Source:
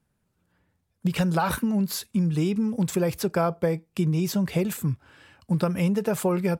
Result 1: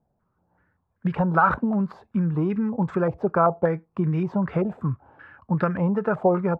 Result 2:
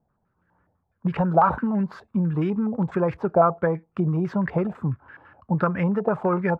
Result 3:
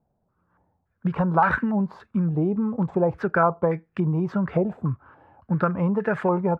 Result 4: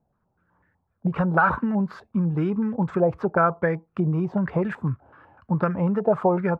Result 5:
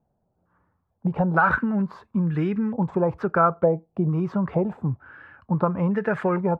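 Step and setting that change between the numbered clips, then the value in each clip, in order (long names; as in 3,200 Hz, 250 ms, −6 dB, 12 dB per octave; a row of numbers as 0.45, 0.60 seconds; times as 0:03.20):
low-pass on a step sequencer, speed: 5.2, 12, 3.5, 8, 2.2 Hertz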